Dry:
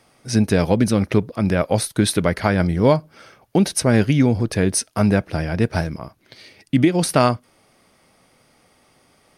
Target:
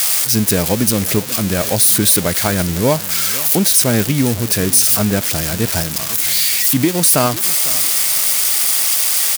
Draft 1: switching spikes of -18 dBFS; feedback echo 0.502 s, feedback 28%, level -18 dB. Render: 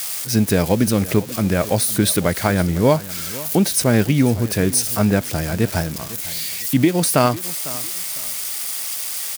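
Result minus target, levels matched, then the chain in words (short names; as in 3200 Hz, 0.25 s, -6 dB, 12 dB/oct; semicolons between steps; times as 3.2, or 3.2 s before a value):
switching spikes: distortion -11 dB
switching spikes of -7 dBFS; feedback echo 0.502 s, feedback 28%, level -18 dB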